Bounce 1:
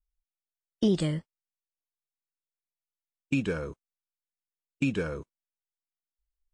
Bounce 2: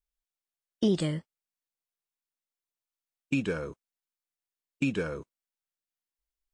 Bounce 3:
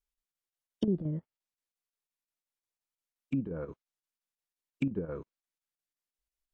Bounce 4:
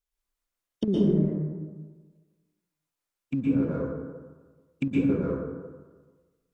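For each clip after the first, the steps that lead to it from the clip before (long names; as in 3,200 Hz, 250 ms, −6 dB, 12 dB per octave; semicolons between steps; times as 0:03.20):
low-shelf EQ 74 Hz −10 dB
treble cut that deepens with the level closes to 360 Hz, closed at −25 dBFS; square-wave tremolo 5.7 Hz, depth 60%, duty 80%; level −1.5 dB
in parallel at −10 dB: dead-zone distortion −48.5 dBFS; on the sum: dense smooth reverb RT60 1.4 s, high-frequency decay 0.4×, pre-delay 105 ms, DRR −6 dB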